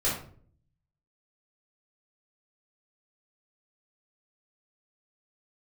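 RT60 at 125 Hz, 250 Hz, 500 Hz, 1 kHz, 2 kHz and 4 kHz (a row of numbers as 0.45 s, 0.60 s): 1.0 s, 0.75 s, 0.60 s, 0.45 s, 0.40 s, 0.30 s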